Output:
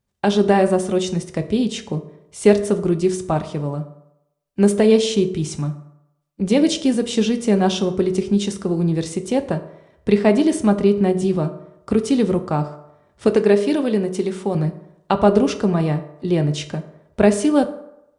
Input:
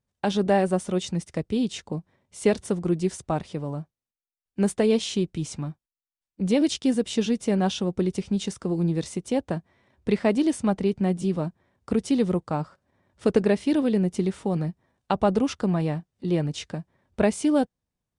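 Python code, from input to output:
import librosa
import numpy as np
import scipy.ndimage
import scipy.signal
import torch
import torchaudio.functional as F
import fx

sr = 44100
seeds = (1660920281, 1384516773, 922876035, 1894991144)

y = fx.low_shelf(x, sr, hz=180.0, db=-10.5, at=(13.28, 14.55))
y = fx.rev_fdn(y, sr, rt60_s=0.85, lf_ratio=0.8, hf_ratio=0.55, size_ms=15.0, drr_db=7.5)
y = F.gain(torch.from_numpy(y), 5.5).numpy()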